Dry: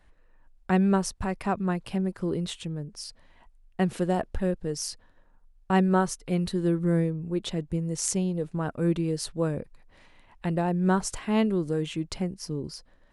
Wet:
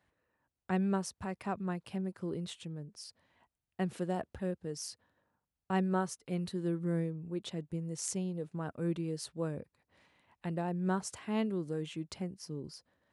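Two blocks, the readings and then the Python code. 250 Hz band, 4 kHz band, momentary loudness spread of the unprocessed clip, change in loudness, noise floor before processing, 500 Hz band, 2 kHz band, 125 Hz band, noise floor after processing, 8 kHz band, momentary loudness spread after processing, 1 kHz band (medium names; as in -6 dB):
-9.0 dB, -9.0 dB, 11 LU, -9.0 dB, -59 dBFS, -9.0 dB, -9.0 dB, -9.0 dB, under -85 dBFS, -9.0 dB, 11 LU, -9.0 dB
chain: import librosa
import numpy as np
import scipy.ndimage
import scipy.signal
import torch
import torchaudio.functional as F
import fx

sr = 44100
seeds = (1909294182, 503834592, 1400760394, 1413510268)

y = scipy.signal.sosfilt(scipy.signal.butter(4, 76.0, 'highpass', fs=sr, output='sos'), x)
y = F.gain(torch.from_numpy(y), -9.0).numpy()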